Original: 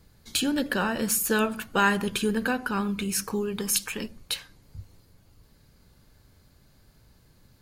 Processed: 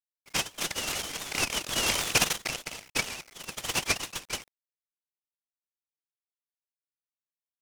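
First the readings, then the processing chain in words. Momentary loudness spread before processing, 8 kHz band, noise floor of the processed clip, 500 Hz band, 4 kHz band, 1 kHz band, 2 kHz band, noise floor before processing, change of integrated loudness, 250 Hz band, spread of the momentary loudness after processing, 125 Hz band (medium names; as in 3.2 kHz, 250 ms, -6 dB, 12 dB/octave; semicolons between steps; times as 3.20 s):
10 LU, -0.5 dB, under -85 dBFS, -9.5 dB, +2.5 dB, -6.5 dB, -2.5 dB, -60 dBFS, -2.5 dB, -15.0 dB, 12 LU, -6.0 dB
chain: formants replaced by sine waves; Chebyshev high-pass 2 kHz, order 8; in parallel at -5 dB: crossover distortion -51 dBFS; on the sum: bit crusher 10-bit; random-step tremolo; ever faster or slower copies 298 ms, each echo +2 st, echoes 2; delay time shaken by noise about 2.8 kHz, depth 0.068 ms; trim +5 dB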